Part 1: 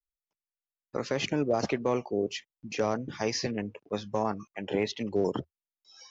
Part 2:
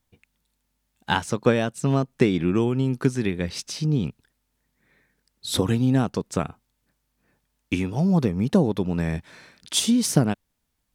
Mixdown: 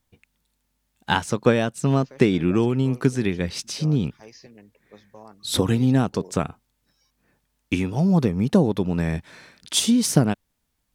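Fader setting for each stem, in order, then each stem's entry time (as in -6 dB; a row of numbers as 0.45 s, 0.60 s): -16.0 dB, +1.5 dB; 1.00 s, 0.00 s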